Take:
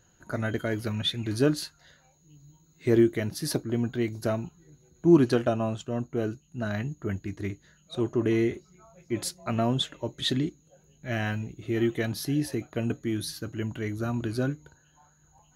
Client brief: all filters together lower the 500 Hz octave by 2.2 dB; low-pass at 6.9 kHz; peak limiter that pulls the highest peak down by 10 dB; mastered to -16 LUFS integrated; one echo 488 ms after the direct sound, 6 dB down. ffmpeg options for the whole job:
-af "lowpass=6900,equalizer=f=500:t=o:g=-3.5,alimiter=limit=0.106:level=0:latency=1,aecho=1:1:488:0.501,volume=5.96"

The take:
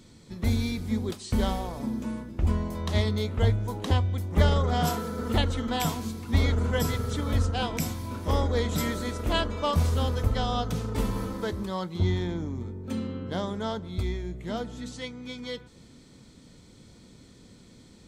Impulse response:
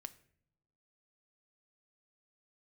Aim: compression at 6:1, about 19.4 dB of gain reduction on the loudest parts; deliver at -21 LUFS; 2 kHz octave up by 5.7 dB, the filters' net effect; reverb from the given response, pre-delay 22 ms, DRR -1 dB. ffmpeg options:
-filter_complex "[0:a]equalizer=f=2000:t=o:g=7,acompressor=threshold=0.0126:ratio=6,asplit=2[s0][s1];[1:a]atrim=start_sample=2205,adelay=22[s2];[s1][s2]afir=irnorm=-1:irlink=0,volume=2[s3];[s0][s3]amix=inputs=2:normalize=0,volume=6.68"

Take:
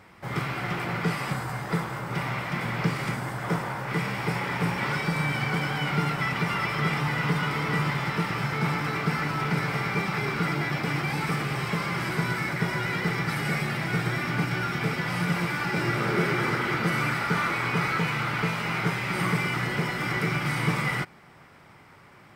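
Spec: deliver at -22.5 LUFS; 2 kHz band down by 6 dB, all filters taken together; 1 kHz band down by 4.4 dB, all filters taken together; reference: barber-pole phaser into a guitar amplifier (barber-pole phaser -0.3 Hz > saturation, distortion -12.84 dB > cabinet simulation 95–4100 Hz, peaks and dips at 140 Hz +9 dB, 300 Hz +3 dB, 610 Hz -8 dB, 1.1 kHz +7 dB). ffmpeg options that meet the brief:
-filter_complex "[0:a]equalizer=f=1000:t=o:g=-7.5,equalizer=f=2000:t=o:g=-5.5,asplit=2[s0][s1];[s1]afreqshift=-0.3[s2];[s0][s2]amix=inputs=2:normalize=1,asoftclip=threshold=0.0398,highpass=95,equalizer=f=140:t=q:w=4:g=9,equalizer=f=300:t=q:w=4:g=3,equalizer=f=610:t=q:w=4:g=-8,equalizer=f=1100:t=q:w=4:g=7,lowpass=f=4100:w=0.5412,lowpass=f=4100:w=1.3066,volume=2.99"

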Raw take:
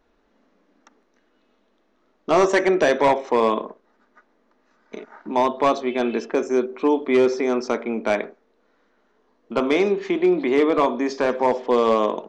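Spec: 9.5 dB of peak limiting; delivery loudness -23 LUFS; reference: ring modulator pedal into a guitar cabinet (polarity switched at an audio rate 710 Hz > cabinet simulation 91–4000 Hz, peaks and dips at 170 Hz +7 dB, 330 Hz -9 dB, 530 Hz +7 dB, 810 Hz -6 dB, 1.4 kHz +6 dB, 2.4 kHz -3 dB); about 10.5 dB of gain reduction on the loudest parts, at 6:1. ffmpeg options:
-af "acompressor=threshold=0.0562:ratio=6,alimiter=limit=0.0794:level=0:latency=1,aeval=exprs='val(0)*sgn(sin(2*PI*710*n/s))':c=same,highpass=91,equalizer=f=170:t=q:w=4:g=7,equalizer=f=330:t=q:w=4:g=-9,equalizer=f=530:t=q:w=4:g=7,equalizer=f=810:t=q:w=4:g=-6,equalizer=f=1400:t=q:w=4:g=6,equalizer=f=2400:t=q:w=4:g=-3,lowpass=f=4000:w=0.5412,lowpass=f=4000:w=1.3066,volume=2.37"

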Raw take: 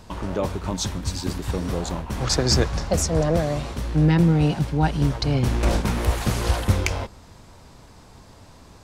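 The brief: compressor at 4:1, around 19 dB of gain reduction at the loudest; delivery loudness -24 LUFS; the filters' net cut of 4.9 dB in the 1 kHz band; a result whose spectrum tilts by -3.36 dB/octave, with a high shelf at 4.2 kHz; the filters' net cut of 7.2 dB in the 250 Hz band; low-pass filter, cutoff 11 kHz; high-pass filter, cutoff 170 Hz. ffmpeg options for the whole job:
-af "highpass=170,lowpass=11000,equalizer=f=250:t=o:g=-8.5,equalizer=f=1000:t=o:g=-6.5,highshelf=f=4200:g=8,acompressor=threshold=0.0126:ratio=4,volume=5.31"

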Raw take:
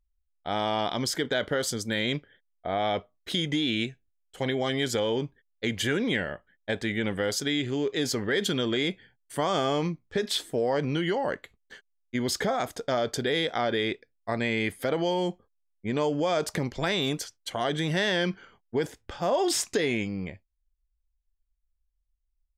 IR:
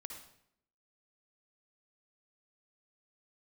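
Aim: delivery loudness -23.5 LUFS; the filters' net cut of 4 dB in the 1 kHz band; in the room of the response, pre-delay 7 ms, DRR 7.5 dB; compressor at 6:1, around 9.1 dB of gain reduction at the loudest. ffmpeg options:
-filter_complex "[0:a]equalizer=f=1000:t=o:g=-6,acompressor=threshold=0.0224:ratio=6,asplit=2[s0][s1];[1:a]atrim=start_sample=2205,adelay=7[s2];[s1][s2]afir=irnorm=-1:irlink=0,volume=0.668[s3];[s0][s3]amix=inputs=2:normalize=0,volume=4.47"

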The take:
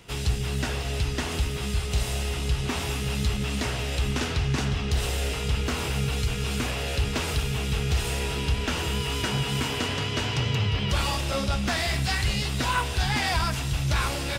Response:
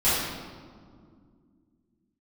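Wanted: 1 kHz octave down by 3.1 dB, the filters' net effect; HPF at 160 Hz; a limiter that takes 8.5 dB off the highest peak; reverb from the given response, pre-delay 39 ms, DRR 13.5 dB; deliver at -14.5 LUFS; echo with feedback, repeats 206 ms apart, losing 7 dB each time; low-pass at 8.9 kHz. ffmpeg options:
-filter_complex "[0:a]highpass=160,lowpass=8900,equalizer=f=1000:t=o:g=-4,alimiter=limit=0.0668:level=0:latency=1,aecho=1:1:206|412|618|824|1030:0.447|0.201|0.0905|0.0407|0.0183,asplit=2[s0][s1];[1:a]atrim=start_sample=2205,adelay=39[s2];[s1][s2]afir=irnorm=-1:irlink=0,volume=0.0335[s3];[s0][s3]amix=inputs=2:normalize=0,volume=6.68"

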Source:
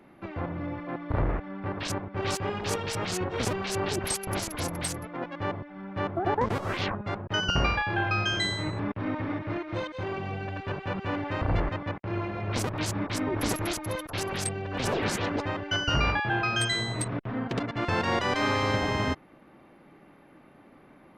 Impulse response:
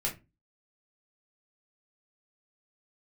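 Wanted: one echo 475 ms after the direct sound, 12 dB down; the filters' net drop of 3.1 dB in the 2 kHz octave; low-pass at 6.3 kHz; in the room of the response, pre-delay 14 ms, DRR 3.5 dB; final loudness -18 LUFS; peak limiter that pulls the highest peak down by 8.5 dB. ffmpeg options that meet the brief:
-filter_complex "[0:a]lowpass=6300,equalizer=f=2000:t=o:g=-4,alimiter=limit=0.0891:level=0:latency=1,aecho=1:1:475:0.251,asplit=2[s0][s1];[1:a]atrim=start_sample=2205,adelay=14[s2];[s1][s2]afir=irnorm=-1:irlink=0,volume=0.398[s3];[s0][s3]amix=inputs=2:normalize=0,volume=4.22"

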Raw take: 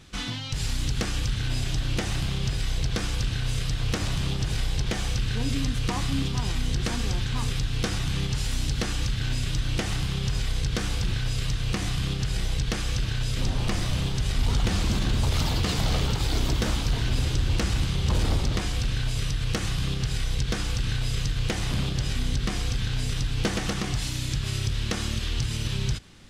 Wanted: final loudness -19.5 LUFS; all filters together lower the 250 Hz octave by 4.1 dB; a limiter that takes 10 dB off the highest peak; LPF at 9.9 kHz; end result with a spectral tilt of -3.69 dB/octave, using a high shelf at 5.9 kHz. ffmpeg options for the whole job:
-af "lowpass=9900,equalizer=f=250:t=o:g=-6.5,highshelf=f=5900:g=5,volume=4.47,alimiter=limit=0.335:level=0:latency=1"

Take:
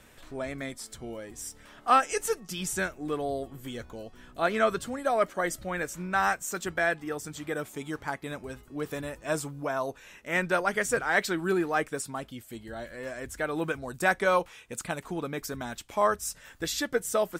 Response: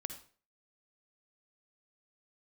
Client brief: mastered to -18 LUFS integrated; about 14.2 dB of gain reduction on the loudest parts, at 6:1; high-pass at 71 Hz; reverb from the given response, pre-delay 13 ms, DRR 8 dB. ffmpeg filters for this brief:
-filter_complex "[0:a]highpass=71,acompressor=threshold=0.0282:ratio=6,asplit=2[s0][s1];[1:a]atrim=start_sample=2205,adelay=13[s2];[s1][s2]afir=irnorm=-1:irlink=0,volume=0.501[s3];[s0][s3]amix=inputs=2:normalize=0,volume=7.94"

